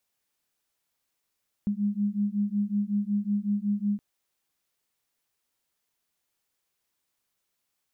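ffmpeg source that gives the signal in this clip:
ffmpeg -f lavfi -i "aevalsrc='0.0422*(sin(2*PI*202*t)+sin(2*PI*207.4*t))':duration=2.32:sample_rate=44100" out.wav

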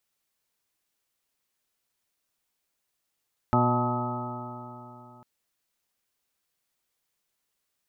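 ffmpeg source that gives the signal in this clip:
ffmpeg -f lavfi -i "aevalsrc='0.0631*pow(10,-3*t/3.24)*sin(2*PI*121.07*t)+0.0631*pow(10,-3*t/3.24)*sin(2*PI*242.53*t)+0.0316*pow(10,-3*t/3.24)*sin(2*PI*364.79*t)+0.00891*pow(10,-3*t/3.24)*sin(2*PI*488.24*t)+0.0376*pow(10,-3*t/3.24)*sin(2*PI*613.26*t)+0.0224*pow(10,-3*t/3.24)*sin(2*PI*740.24*t)+0.0668*pow(10,-3*t/3.24)*sin(2*PI*869.53*t)+0.0126*pow(10,-3*t/3.24)*sin(2*PI*1001.49*t)+0.0126*pow(10,-3*t/3.24)*sin(2*PI*1136.48*t)+0.0531*pow(10,-3*t/3.24)*sin(2*PI*1274.81*t)':duration=1.7:sample_rate=44100" out.wav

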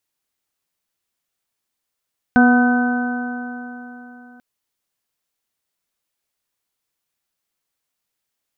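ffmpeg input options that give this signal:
ffmpeg -f lavfi -i "aevalsrc='0.355*pow(10,-3*t/3.54)*sin(2*PI*244.23*t)+0.0708*pow(10,-3*t/3.54)*sin(2*PI*489.85*t)+0.158*pow(10,-3*t/3.54)*sin(2*PI*738.23*t)+0.0398*pow(10,-3*t/3.54)*sin(2*PI*990.72*t)+0.0398*pow(10,-3*t/3.54)*sin(2*PI*1248.64*t)+0.178*pow(10,-3*t/3.54)*sin(2*PI*1513.24*t)':duration=2.04:sample_rate=44100" out.wav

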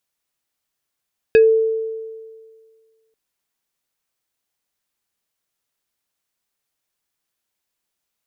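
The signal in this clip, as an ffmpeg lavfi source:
ffmpeg -f lavfi -i "aevalsrc='0.501*pow(10,-3*t/1.82)*sin(2*PI*445*t+0.51*pow(10,-3*t/0.17)*sin(2*PI*4.74*445*t))':duration=1.79:sample_rate=44100" out.wav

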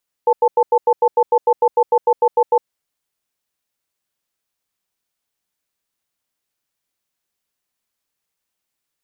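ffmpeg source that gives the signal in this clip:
ffmpeg -f lavfi -i "aevalsrc='0.237*(sin(2*PI*482*t)+sin(2*PI*879*t))*clip(min(mod(t,0.15),0.06-mod(t,0.15))/0.005,0,1)':duration=2.39:sample_rate=44100" out.wav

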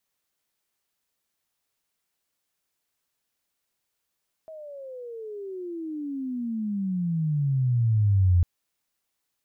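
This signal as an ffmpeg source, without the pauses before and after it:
ffmpeg -f lavfi -i "aevalsrc='pow(10,(-15.5+23*(t/3.95-1))/20)*sin(2*PI*646*3.95/(-35*log(2)/12)*(exp(-35*log(2)/12*t/3.95)-1))':duration=3.95:sample_rate=44100" out.wav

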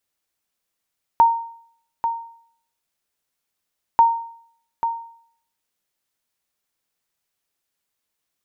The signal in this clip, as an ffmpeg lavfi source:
ffmpeg -f lavfi -i "aevalsrc='0.473*(sin(2*PI*923*mod(t,2.79))*exp(-6.91*mod(t,2.79)/0.6)+0.355*sin(2*PI*923*max(mod(t,2.79)-0.84,0))*exp(-6.91*max(mod(t,2.79)-0.84,0)/0.6))':duration=5.58:sample_rate=44100" out.wav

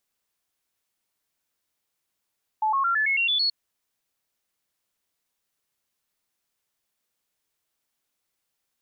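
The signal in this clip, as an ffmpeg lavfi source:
ffmpeg -f lavfi -i "aevalsrc='0.1*clip(min(mod(t,0.11),0.11-mod(t,0.11))/0.005,0,1)*sin(2*PI*866*pow(2,floor(t/0.11)/3)*mod(t,0.11))':duration=0.88:sample_rate=44100" out.wav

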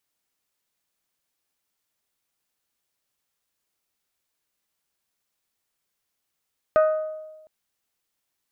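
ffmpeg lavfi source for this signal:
ffmpeg -f lavfi -i "aevalsrc='0.224*pow(10,-3*t/1.18)*sin(2*PI*624*t)+0.0841*pow(10,-3*t/0.726)*sin(2*PI*1248*t)+0.0316*pow(10,-3*t/0.639)*sin(2*PI*1497.6*t)+0.0119*pow(10,-3*t/0.547)*sin(2*PI*1872*t)+0.00447*pow(10,-3*t/0.447)*sin(2*PI*2496*t)':duration=0.71:sample_rate=44100" out.wav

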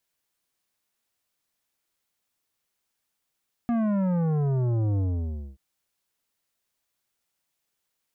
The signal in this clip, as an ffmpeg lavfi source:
ffmpeg -f lavfi -i "aevalsrc='0.0708*clip((1.88-t)/0.59,0,1)*tanh(3.76*sin(2*PI*240*1.88/log(65/240)*(exp(log(65/240)*t/1.88)-1)))/tanh(3.76)':duration=1.88:sample_rate=44100" out.wav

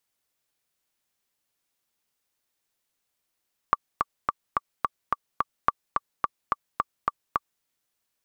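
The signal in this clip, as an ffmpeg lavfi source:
ffmpeg -f lavfi -i "aevalsrc='pow(10,(-5.5-4*gte(mod(t,7*60/215),60/215))/20)*sin(2*PI*1160*mod(t,60/215))*exp(-6.91*mod(t,60/215)/0.03)':duration=3.9:sample_rate=44100" out.wav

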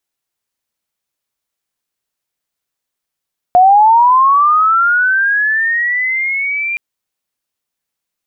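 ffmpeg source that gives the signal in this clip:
ffmpeg -f lavfi -i "aevalsrc='pow(10,(-3.5-12*t/3.22)/20)*sin(2*PI*(710*t+1690*t*t/(2*3.22)))':duration=3.22:sample_rate=44100" out.wav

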